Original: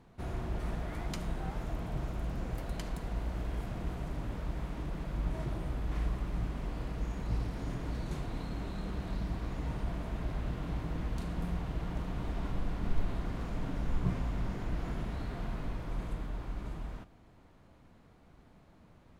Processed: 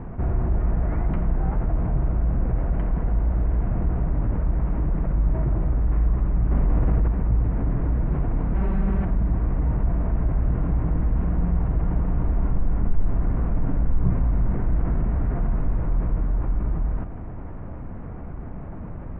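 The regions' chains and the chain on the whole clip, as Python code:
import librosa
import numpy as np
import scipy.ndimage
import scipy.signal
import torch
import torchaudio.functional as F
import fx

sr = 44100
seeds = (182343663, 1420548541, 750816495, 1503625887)

y = fx.chain(x, sr, fx.delta_mod(bps=64000, step_db=-54.5),
    fx.env_flatten(amount_pct=100), at=(6.51, 7.08))
y = fx.chain(y, sr, fx.high_shelf(hz=2100.0, db=9.0),
    fx.comb(ms=5.2, depth=0.92), at=(8.54, 9.05))
y = scipy.signal.sosfilt(scipy.signal.bessel(8, 1300.0, 'lowpass', norm='mag', fs=sr, output='sos'), y)
y = fx.low_shelf(y, sr, hz=120.0, db=9.0)
y = fx.env_flatten(y, sr, amount_pct=50)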